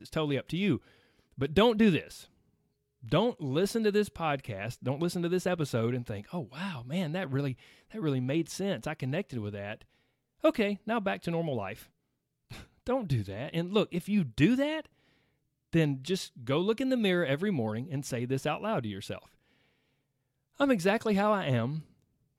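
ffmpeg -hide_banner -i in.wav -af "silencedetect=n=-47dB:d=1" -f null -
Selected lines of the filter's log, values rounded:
silence_start: 19.26
silence_end: 20.60 | silence_duration: 1.34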